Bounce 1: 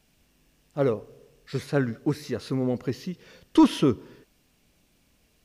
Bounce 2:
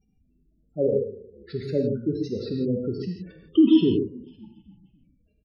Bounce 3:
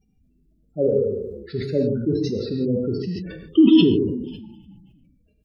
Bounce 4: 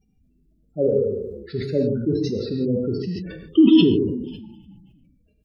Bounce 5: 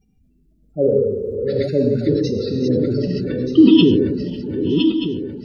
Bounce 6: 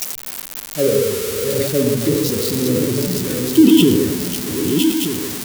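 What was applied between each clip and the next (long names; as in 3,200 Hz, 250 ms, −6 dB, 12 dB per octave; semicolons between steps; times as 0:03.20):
echo with shifted repeats 276 ms, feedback 54%, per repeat −32 Hz, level −23 dB; gate on every frequency bin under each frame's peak −10 dB strong; reverb whose tail is shaped and stops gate 180 ms flat, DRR 1.5 dB
level that may fall only so fast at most 46 dB per second; level +2.5 dB
no processing that can be heard
feedback delay that plays each chunk backwards 615 ms, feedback 54%, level −5 dB; level +3.5 dB
spike at every zero crossing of −9.5 dBFS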